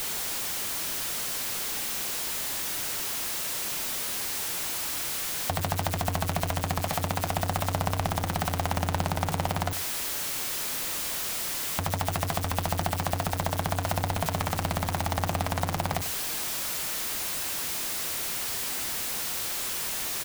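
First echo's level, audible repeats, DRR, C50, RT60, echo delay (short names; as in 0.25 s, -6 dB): -14.5 dB, 1, none, none, none, 94 ms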